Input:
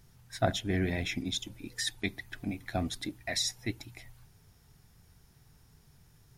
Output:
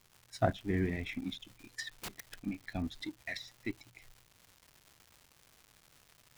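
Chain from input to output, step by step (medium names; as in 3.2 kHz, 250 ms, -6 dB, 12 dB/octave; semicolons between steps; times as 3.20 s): spectral noise reduction 9 dB; low-pass that closes with the level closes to 2 kHz, closed at -30 dBFS; in parallel at -6 dB: crossover distortion -41.5 dBFS; on the sum: crackle 360 per s -42 dBFS; 1.94–2.34 s: integer overflow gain 31.5 dB; trim -4.5 dB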